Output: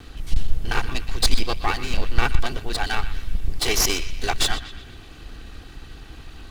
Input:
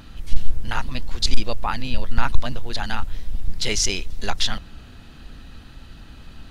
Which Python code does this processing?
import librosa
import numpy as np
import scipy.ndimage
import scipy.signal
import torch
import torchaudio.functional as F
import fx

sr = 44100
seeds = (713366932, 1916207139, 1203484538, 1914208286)

y = fx.lower_of_two(x, sr, delay_ms=2.6)
y = fx.echo_banded(y, sr, ms=122, feedback_pct=56, hz=2500.0, wet_db=-12.0)
y = y * 10.0 ** (3.0 / 20.0)